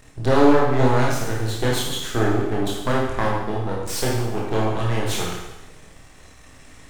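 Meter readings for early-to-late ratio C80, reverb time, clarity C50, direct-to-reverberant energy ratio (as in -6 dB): 4.0 dB, 1.0 s, 0.5 dB, -4.0 dB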